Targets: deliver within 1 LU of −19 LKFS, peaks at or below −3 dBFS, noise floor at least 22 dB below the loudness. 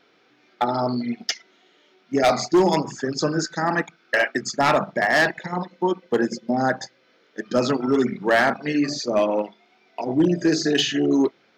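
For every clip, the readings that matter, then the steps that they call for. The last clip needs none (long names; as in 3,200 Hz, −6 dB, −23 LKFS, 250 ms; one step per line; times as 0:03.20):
share of clipped samples 0.6%; peaks flattened at −11.5 dBFS; integrated loudness −22.0 LKFS; sample peak −11.5 dBFS; target loudness −19.0 LKFS
→ clipped peaks rebuilt −11.5 dBFS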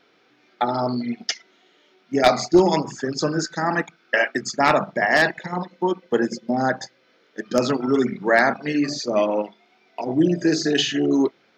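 share of clipped samples 0.0%; integrated loudness −21.5 LKFS; sample peak −2.5 dBFS; target loudness −19.0 LKFS
→ level +2.5 dB
brickwall limiter −3 dBFS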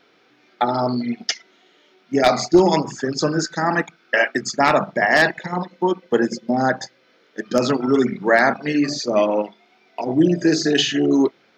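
integrated loudness −19.5 LKFS; sample peak −3.0 dBFS; background noise floor −58 dBFS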